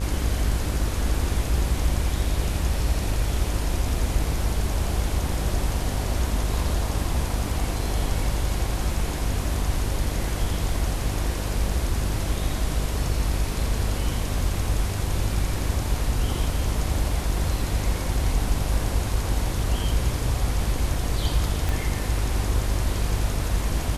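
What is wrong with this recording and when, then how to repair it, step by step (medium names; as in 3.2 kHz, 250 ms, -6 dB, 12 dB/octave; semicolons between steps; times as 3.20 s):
buzz 50 Hz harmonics 37 -28 dBFS
21.69 s: pop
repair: de-click; de-hum 50 Hz, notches 37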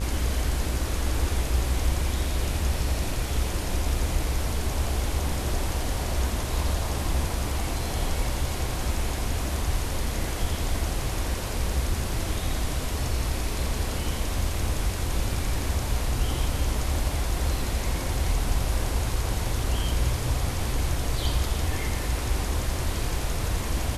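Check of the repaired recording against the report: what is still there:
21.69 s: pop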